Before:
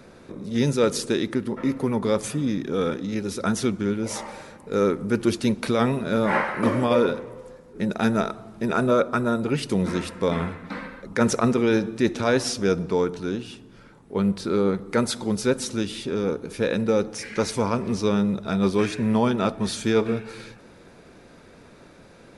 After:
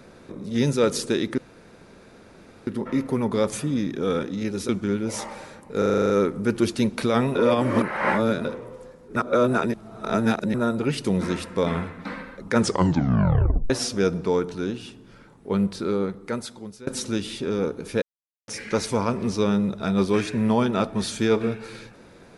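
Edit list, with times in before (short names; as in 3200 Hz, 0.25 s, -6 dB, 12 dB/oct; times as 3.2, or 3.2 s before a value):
1.38 insert room tone 1.29 s
3.4–3.66 cut
4.75 stutter 0.04 s, 9 plays
6–7.1 reverse
7.81–9.19 reverse
11.23 tape stop 1.12 s
14.22–15.52 fade out, to -23 dB
16.67–17.13 mute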